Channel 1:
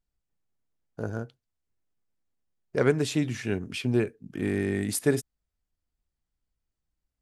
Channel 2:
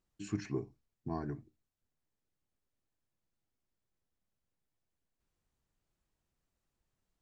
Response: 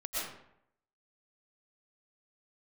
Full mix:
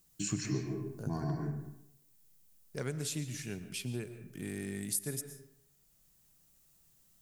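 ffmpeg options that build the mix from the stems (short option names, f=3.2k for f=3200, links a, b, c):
-filter_complex "[0:a]highshelf=f=4k:g=7.5,volume=-16dB,asplit=3[a][b][c];[b]volume=-14.5dB[d];[1:a]highshelf=f=6k:g=7,volume=2dB,asplit=2[e][f];[f]volume=-3dB[g];[c]apad=whole_len=318285[h];[e][h]sidechaincompress=threshold=-45dB:ratio=8:attack=16:release=1360[i];[2:a]atrim=start_sample=2205[j];[d][g]amix=inputs=2:normalize=0[k];[k][j]afir=irnorm=-1:irlink=0[l];[a][i][l]amix=inputs=3:normalize=0,equalizer=f=150:t=o:w=0.86:g=10,crystalizer=i=3:c=0,acompressor=threshold=-34dB:ratio=2.5"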